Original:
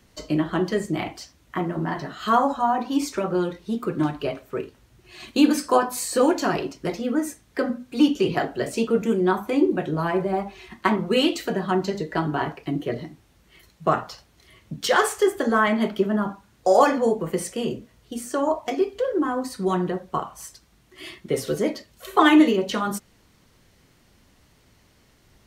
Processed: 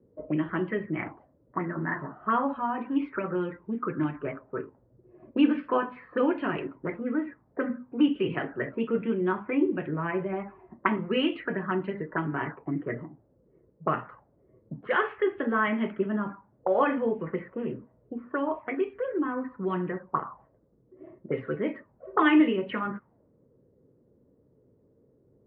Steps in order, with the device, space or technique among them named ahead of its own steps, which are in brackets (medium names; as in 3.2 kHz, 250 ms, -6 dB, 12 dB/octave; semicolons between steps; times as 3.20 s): 17.69–18.94 s: treble shelf 3.5 kHz +9 dB; envelope filter bass rig (touch-sensitive low-pass 460–3000 Hz up, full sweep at -19.5 dBFS; cabinet simulation 65–2100 Hz, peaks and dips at 68 Hz -8 dB, 130 Hz +4 dB, 270 Hz +3 dB, 730 Hz -7 dB); trim -6.5 dB